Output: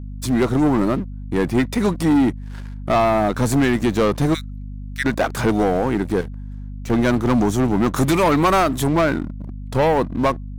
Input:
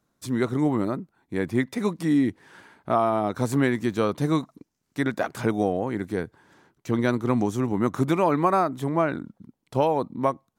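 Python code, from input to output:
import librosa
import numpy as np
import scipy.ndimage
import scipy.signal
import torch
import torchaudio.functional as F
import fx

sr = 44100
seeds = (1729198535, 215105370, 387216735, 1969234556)

y = fx.steep_highpass(x, sr, hz=1300.0, slope=96, at=(4.33, 5.04), fade=0.02)
y = fx.high_shelf(y, sr, hz=3400.0, db=10.5, at=(7.96, 8.87))
y = fx.leveller(y, sr, passes=3)
y = fx.overload_stage(y, sr, gain_db=29.0, at=(6.21, 6.9))
y = fx.add_hum(y, sr, base_hz=50, snr_db=12)
y = y * 10.0 ** (-1.5 / 20.0)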